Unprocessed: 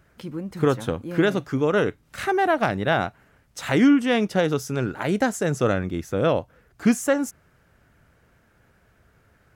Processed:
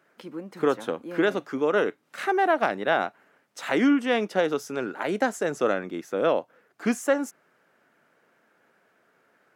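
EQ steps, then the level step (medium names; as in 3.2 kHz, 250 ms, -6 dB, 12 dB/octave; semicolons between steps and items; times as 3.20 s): Bessel high-pass 330 Hz, order 4; treble shelf 3.5 kHz -7 dB; 0.0 dB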